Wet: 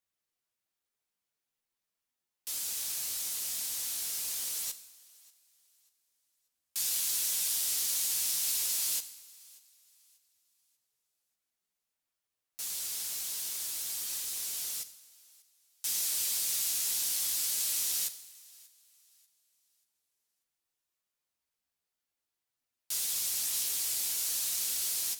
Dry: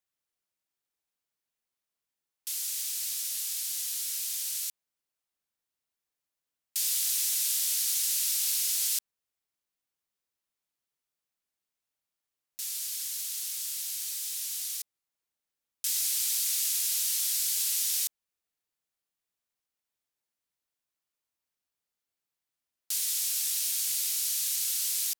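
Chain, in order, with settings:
multi-voice chorus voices 2, 0.53 Hz, delay 12 ms, depth 4 ms
in parallel at −8.5 dB: wrap-around overflow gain 34 dB
on the sum: feedback echo with a high-pass in the loop 588 ms, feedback 33%, high-pass 420 Hz, level −24 dB
coupled-rooms reverb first 0.91 s, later 2.6 s, from −23 dB, DRR 10.5 dB

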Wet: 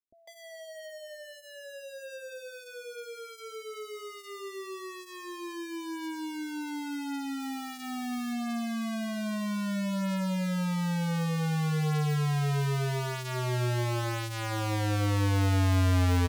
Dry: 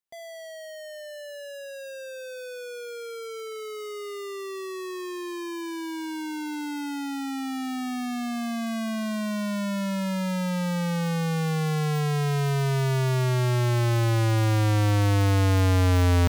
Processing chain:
0:07.25–0:08.18: each half-wave held at its own peak
multiband delay without the direct sound lows, highs 150 ms, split 440 Hz
flanger 0.22 Hz, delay 3 ms, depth 4.8 ms, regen −32%

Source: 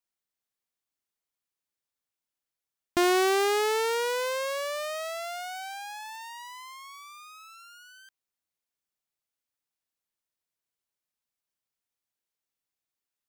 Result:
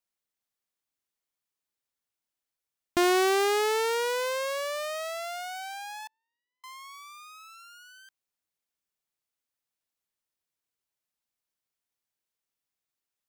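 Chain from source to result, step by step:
0:06.07–0:06.64: elliptic band-pass filter 250–550 Hz, stop band 40 dB

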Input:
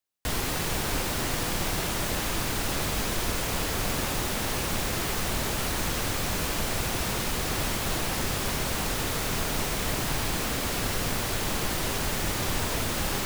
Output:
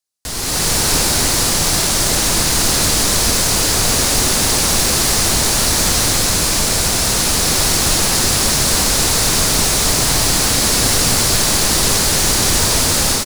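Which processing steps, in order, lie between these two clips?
flat-topped bell 6,700 Hz +9 dB
automatic gain control gain up to 12.5 dB
single-tap delay 279 ms −4.5 dB
level −1 dB

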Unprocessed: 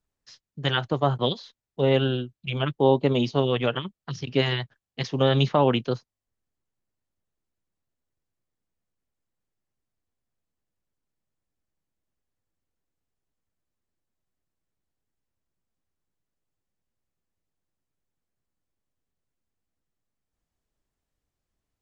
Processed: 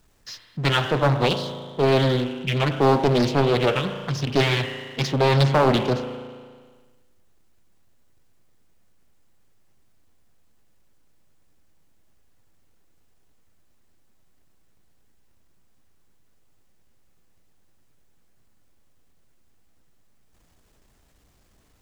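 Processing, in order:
spring reverb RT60 1.2 s, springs 36 ms, chirp 75 ms, DRR 10 dB
power curve on the samples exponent 0.7
highs frequency-modulated by the lows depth 0.79 ms

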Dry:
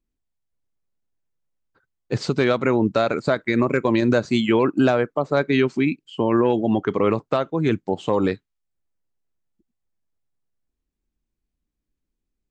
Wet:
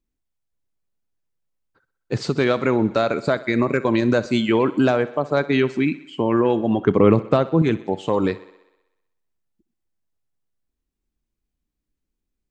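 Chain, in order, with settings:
0:06.81–0:07.62: low-shelf EQ 420 Hz +10 dB
on a send: feedback echo with a high-pass in the loop 63 ms, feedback 66%, high-pass 190 Hz, level −17.5 dB

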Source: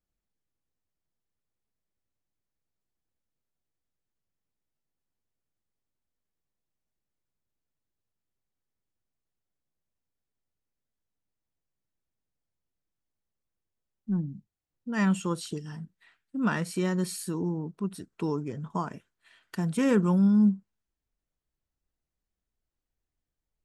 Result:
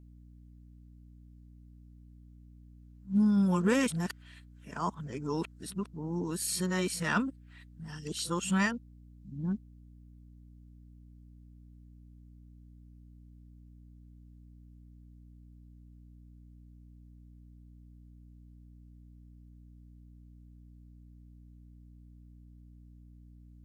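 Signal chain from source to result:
played backwards from end to start
tilt shelving filter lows −4.5 dB, about 1,100 Hz
mains hum 60 Hz, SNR 16 dB

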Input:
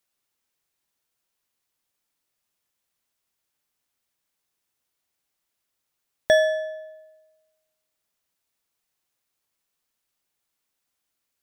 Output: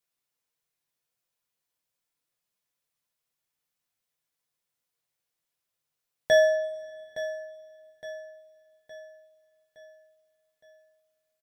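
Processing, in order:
on a send: repeating echo 865 ms, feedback 49%, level −14 dB
on the sum: coupled-rooms reverb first 0.3 s, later 3 s, from −22 dB, DRR 1.5 dB
level −7.5 dB

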